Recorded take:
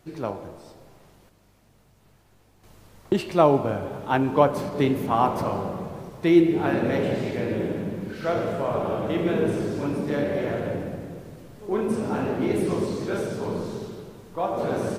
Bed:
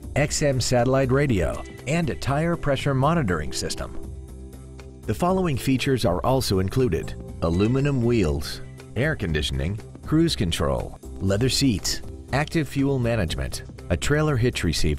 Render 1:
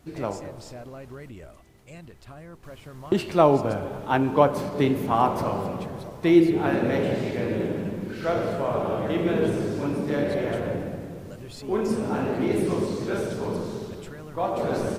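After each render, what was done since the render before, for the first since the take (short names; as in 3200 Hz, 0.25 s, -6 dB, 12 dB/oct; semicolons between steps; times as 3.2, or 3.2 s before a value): add bed -21 dB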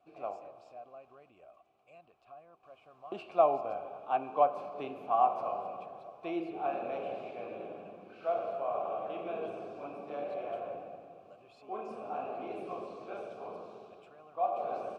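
vowel filter a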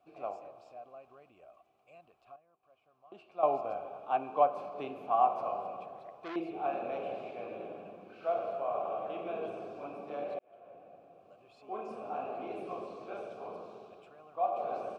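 2.36–3.43 gain -11.5 dB; 5.96–6.36 core saturation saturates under 1500 Hz; 10.39–11.75 fade in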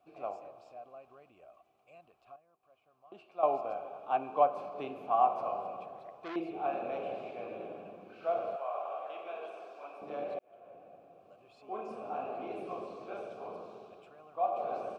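3.25–4.05 low shelf 130 Hz -9 dB; 8.56–10.02 HPF 680 Hz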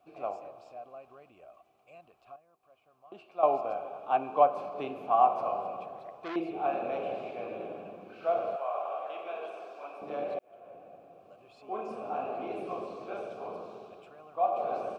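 gain +3.5 dB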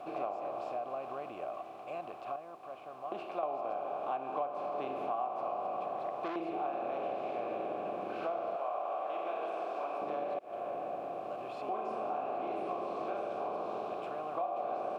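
per-bin compression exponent 0.6; compressor 5:1, threshold -34 dBFS, peak gain reduction 17 dB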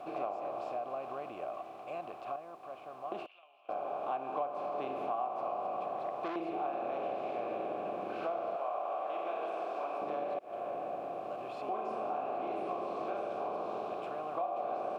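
3.26–3.69 band-pass 2900 Hz, Q 6.4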